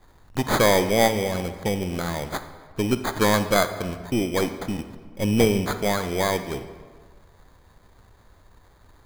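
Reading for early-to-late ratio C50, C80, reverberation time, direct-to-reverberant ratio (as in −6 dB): 11.0 dB, 12.0 dB, 1.6 s, 10.0 dB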